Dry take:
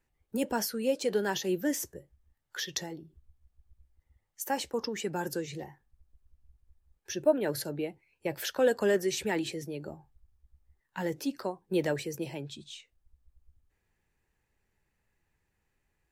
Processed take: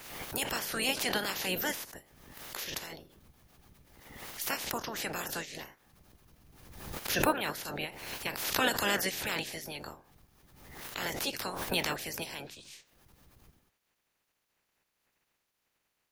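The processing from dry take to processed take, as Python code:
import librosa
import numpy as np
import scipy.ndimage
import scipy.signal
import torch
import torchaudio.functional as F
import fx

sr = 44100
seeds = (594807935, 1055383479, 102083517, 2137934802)

y = fx.spec_clip(x, sr, under_db=30)
y = fx.peak_eq(y, sr, hz=8000.0, db=-6.0, octaves=0.37)
y = fx.pre_swell(y, sr, db_per_s=46.0)
y = y * librosa.db_to_amplitude(-3.5)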